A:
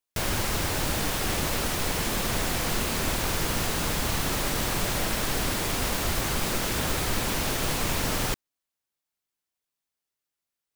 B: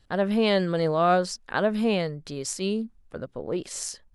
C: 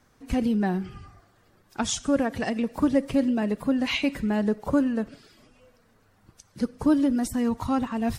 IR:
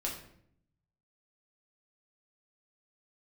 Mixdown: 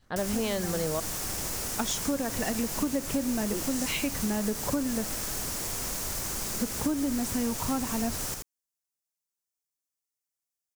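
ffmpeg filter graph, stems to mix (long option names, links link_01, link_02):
-filter_complex "[0:a]highshelf=frequency=4700:width_type=q:width=1.5:gain=7.5,volume=-10.5dB,asplit=2[link_01][link_02];[link_02]volume=-4.5dB[link_03];[1:a]volume=-4dB,asplit=3[link_04][link_05][link_06];[link_04]atrim=end=1,asetpts=PTS-STARTPTS,afade=type=out:start_time=0.996:duration=0.004:curve=hsin[link_07];[link_05]atrim=start=1:end=3.52,asetpts=PTS-STARTPTS,volume=0[link_08];[link_06]atrim=start=3.52,asetpts=PTS-STARTPTS,afade=type=in:duration=0.004:curve=hsin[link_09];[link_07][link_08][link_09]concat=n=3:v=0:a=1,asplit=2[link_10][link_11];[2:a]agate=range=-33dB:threshold=-58dB:ratio=3:detection=peak,volume=-1.5dB[link_12];[link_11]apad=whole_len=361065[link_13];[link_12][link_13]sidechaincompress=threshold=-32dB:ratio=8:attack=16:release=971[link_14];[link_03]aecho=0:1:82:1[link_15];[link_01][link_10][link_14][link_15]amix=inputs=4:normalize=0,acompressor=threshold=-25dB:ratio=6"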